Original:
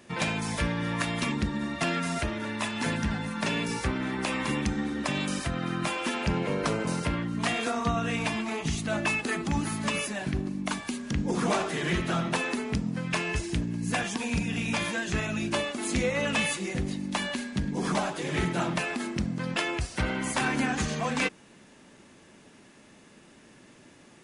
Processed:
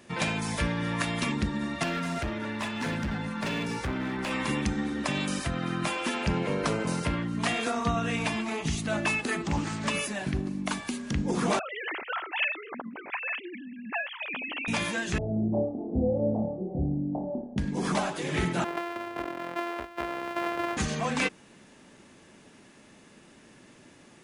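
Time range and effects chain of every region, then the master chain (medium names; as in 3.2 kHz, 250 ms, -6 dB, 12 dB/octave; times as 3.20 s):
1.83–4.31 s: low-pass 3.9 kHz 6 dB/octave + overload inside the chain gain 26.5 dB
9.42–9.87 s: brick-wall FIR low-pass 8.8 kHz + band-stop 240 Hz, Q 5.1 + loudspeaker Doppler distortion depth 0.29 ms
11.59–14.68 s: formants replaced by sine waves + high-pass 1.2 kHz 6 dB/octave
15.18–17.58 s: Chebyshev low-pass 770 Hz, order 5 + flutter echo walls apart 4.7 m, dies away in 0.45 s
18.64–20.77 s: sorted samples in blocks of 128 samples + three-band isolator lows -19 dB, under 340 Hz, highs -19 dB, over 2.7 kHz
whole clip: none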